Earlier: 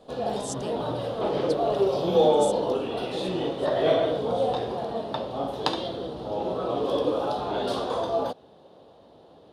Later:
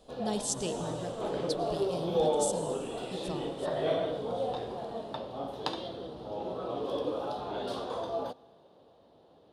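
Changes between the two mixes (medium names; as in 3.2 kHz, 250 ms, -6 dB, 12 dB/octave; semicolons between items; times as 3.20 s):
background -8.5 dB; reverb: on, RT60 2.3 s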